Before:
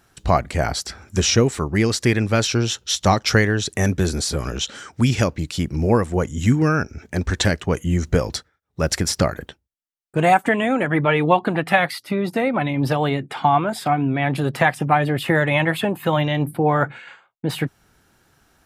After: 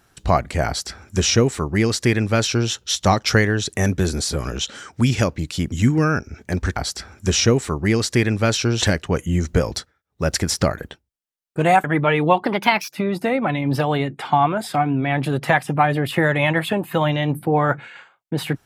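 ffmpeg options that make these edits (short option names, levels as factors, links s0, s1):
-filter_complex "[0:a]asplit=7[s0][s1][s2][s3][s4][s5][s6];[s0]atrim=end=5.722[s7];[s1]atrim=start=6.358:end=7.402[s8];[s2]atrim=start=0.658:end=2.722[s9];[s3]atrim=start=7.398:end=10.422[s10];[s4]atrim=start=10.848:end=11.464[s11];[s5]atrim=start=11.46:end=12.06,asetpts=PTS-STARTPTS,asetrate=53802,aresample=44100[s12];[s6]atrim=start=12.056[s13];[s7][s8]acrossfade=d=0.004:c1=hsin:c2=hsin[s14];[s14][s9]acrossfade=d=0.004:c1=hsin:c2=hsin[s15];[s15][s10]acrossfade=d=0.004:c1=hsin:c2=hsin[s16];[s16][s11]acrossfade=d=0.004:c1=hsin:c2=hsin[s17];[s17][s12]acrossfade=d=0.004:c1=hsin:c2=hsin[s18];[s18][s13]acrossfade=d=0.004:c1=hsin:c2=hsin"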